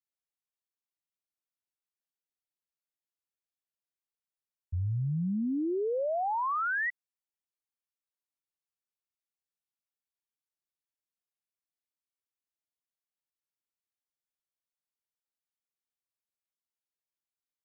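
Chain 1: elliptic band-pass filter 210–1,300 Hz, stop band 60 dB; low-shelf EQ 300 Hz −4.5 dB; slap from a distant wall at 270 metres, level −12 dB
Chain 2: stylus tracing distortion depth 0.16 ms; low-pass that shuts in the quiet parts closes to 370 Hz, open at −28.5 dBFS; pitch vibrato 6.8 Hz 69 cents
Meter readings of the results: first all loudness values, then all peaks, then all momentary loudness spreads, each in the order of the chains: −35.5, −31.0 LKFS; −27.5, −27.0 dBFS; 16, 5 LU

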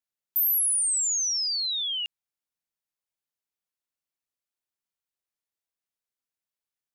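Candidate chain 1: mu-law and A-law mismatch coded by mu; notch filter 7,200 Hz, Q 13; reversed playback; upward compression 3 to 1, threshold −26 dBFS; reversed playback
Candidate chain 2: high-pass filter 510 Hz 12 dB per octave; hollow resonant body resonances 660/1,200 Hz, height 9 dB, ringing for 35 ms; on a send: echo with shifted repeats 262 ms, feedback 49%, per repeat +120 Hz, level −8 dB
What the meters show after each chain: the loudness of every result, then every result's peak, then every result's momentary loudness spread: −22.5, −23.0 LKFS; −11.5, −17.5 dBFS; 8, 15 LU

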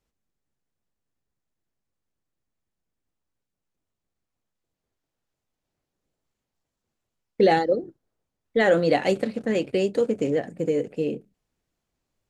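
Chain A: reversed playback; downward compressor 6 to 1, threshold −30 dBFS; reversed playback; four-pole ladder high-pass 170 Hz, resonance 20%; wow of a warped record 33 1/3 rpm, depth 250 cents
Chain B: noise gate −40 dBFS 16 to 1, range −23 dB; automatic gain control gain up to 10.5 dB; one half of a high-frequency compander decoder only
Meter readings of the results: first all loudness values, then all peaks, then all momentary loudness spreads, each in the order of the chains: −39.0, −16.5 LKFS; −23.5, −1.5 dBFS; 4, 7 LU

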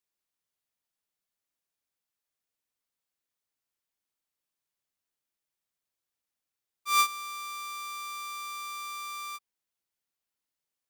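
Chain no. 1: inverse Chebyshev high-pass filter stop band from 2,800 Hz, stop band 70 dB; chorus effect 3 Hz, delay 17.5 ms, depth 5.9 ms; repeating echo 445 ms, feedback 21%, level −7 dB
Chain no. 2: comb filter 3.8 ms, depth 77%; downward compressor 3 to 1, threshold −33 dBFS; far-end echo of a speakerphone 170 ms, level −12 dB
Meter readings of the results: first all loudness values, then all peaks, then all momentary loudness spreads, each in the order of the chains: −46.0, −36.5 LKFS; −22.0, −24.5 dBFS; 18, 8 LU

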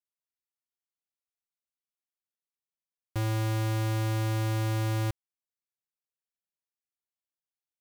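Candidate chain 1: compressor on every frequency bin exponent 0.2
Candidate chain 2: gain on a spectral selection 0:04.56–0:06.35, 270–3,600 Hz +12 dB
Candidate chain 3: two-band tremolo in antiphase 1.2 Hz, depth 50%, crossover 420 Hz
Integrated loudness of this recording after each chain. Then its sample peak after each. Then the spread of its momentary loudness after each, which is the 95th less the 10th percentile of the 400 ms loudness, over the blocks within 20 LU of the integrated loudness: −30.0, −27.0, −32.0 LKFS; −23.0, −15.5, −25.5 dBFS; 18, 10, 5 LU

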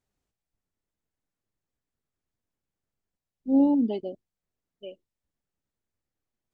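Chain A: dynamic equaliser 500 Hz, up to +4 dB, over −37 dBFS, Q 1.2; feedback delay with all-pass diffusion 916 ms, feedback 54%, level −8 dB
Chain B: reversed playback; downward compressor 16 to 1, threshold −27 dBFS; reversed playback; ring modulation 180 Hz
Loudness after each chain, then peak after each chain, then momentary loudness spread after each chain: −26.5, −36.0 LKFS; −10.0, −22.5 dBFS; 18, 17 LU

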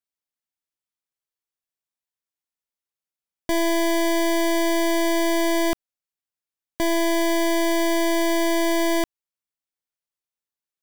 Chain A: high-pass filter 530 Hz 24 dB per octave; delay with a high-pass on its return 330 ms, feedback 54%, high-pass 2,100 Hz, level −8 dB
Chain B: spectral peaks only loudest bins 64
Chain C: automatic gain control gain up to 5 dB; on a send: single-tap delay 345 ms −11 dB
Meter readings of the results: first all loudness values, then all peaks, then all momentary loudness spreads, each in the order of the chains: −24.0, −22.0, −17.0 LKFS; −13.5, −18.5, −13.0 dBFS; 17, 5, 12 LU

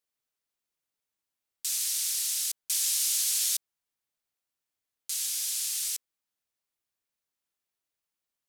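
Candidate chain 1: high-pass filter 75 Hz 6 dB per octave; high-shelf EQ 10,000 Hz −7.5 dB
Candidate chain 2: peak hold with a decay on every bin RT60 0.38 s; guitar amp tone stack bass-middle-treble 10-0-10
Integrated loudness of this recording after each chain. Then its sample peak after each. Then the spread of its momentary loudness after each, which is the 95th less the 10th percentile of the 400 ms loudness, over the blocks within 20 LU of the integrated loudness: −30.0, −26.0 LKFS; −17.0, −14.0 dBFS; 9, 11 LU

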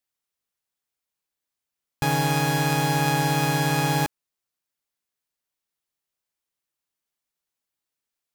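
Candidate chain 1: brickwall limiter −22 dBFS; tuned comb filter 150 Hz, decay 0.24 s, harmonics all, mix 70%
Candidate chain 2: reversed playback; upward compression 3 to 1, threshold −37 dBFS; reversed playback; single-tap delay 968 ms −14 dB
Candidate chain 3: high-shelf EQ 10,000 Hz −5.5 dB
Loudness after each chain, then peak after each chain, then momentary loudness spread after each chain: −36.5, −23.5, −23.0 LKFS; −26.0, −12.0, −12.5 dBFS; 4, 15, 4 LU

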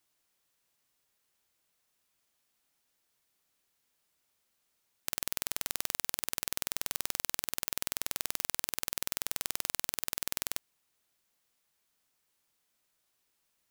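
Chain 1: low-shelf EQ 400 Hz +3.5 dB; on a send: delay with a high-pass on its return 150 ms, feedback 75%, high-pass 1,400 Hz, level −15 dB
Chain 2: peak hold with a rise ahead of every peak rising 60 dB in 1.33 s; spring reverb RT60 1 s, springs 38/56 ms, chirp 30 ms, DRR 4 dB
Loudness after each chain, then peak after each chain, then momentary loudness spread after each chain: −34.0, −29.0 LKFS; −3.5, −1.5 dBFS; 6, 2 LU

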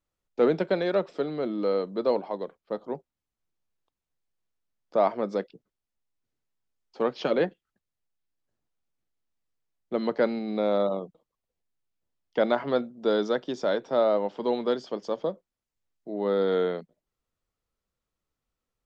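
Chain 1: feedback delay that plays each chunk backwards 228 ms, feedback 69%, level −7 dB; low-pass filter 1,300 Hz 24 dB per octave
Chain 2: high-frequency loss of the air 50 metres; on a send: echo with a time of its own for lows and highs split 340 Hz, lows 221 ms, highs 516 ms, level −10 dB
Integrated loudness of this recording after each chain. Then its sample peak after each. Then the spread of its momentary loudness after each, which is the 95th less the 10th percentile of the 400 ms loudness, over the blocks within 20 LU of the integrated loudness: −27.5, −28.5 LKFS; −9.5, −10.5 dBFS; 18, 19 LU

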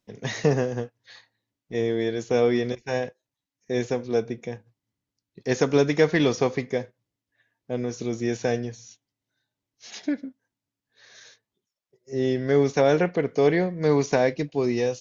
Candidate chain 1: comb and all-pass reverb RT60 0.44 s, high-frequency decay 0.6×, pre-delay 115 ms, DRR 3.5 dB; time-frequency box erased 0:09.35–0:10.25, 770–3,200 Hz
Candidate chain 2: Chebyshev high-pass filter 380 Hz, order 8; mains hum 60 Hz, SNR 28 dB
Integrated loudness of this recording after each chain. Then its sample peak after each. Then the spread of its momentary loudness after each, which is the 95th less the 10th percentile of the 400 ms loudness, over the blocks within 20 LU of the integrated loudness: −24.0, −26.5 LKFS; −4.5, −9.0 dBFS; 15, 17 LU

